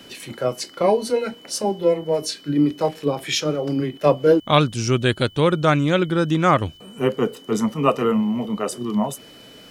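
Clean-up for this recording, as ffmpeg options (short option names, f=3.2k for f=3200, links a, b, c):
-af "bandreject=f=3k:w=30"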